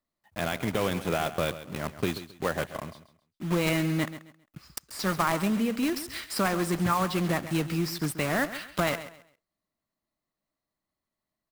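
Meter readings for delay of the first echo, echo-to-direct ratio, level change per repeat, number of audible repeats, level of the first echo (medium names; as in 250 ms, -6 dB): 134 ms, -13.0 dB, -11.5 dB, 2, -13.5 dB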